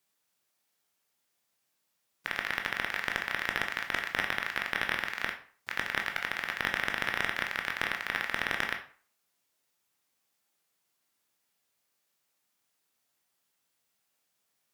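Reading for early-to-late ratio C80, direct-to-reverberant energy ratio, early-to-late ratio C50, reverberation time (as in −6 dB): 14.0 dB, 3.0 dB, 10.0 dB, 0.45 s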